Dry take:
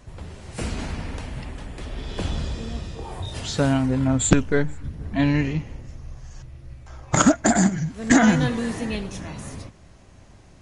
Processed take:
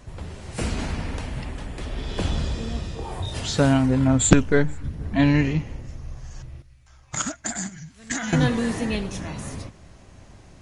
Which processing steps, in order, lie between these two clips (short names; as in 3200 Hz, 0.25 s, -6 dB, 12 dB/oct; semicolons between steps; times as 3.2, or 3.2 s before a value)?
6.62–8.33 passive tone stack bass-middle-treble 5-5-5; gain +2 dB